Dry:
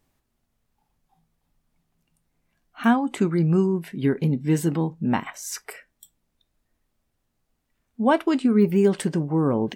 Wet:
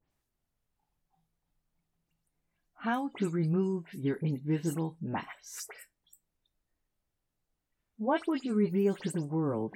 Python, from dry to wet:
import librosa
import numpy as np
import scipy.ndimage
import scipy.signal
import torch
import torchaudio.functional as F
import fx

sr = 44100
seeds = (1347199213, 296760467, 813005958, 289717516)

y = fx.spec_delay(x, sr, highs='late', ms=103)
y = y * 10.0 ** (-9.0 / 20.0)